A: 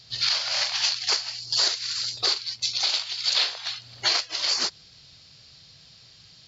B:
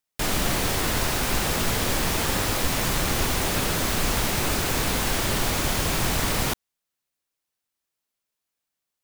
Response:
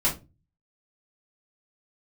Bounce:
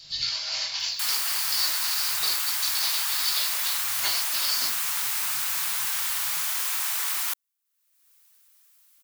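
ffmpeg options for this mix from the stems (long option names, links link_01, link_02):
-filter_complex "[0:a]highshelf=frequency=2600:gain=9.5,acrossover=split=140[link_01][link_02];[link_02]acompressor=threshold=-28dB:ratio=3[link_03];[link_01][link_03]amix=inputs=2:normalize=0,volume=-10dB,asplit=2[link_04][link_05];[link_05]volume=-3dB[link_06];[1:a]highpass=frequency=980:width=0.5412,highpass=frequency=980:width=1.3066,highshelf=frequency=8400:gain=11.5,acompressor=mode=upward:threshold=-35dB:ratio=2.5,adelay=800,volume=-5.5dB[link_07];[2:a]atrim=start_sample=2205[link_08];[link_06][link_08]afir=irnorm=-1:irlink=0[link_09];[link_04][link_07][link_09]amix=inputs=3:normalize=0"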